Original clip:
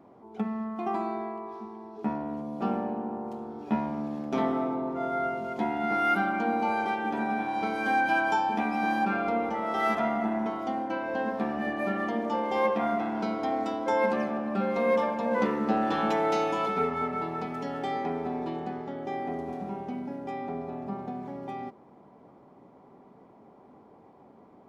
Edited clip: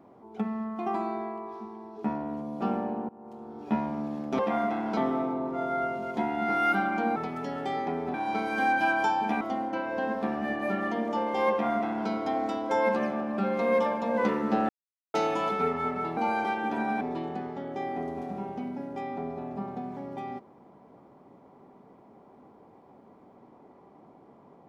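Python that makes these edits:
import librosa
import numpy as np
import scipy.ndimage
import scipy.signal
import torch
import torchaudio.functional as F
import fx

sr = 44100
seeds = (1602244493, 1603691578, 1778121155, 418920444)

y = fx.edit(x, sr, fx.fade_in_from(start_s=3.09, length_s=0.63, floor_db=-21.5),
    fx.swap(start_s=6.58, length_s=0.84, other_s=17.34, other_length_s=0.98),
    fx.cut(start_s=8.69, length_s=1.89),
    fx.duplicate(start_s=12.68, length_s=0.58, to_s=4.39),
    fx.silence(start_s=15.86, length_s=0.45), tone=tone)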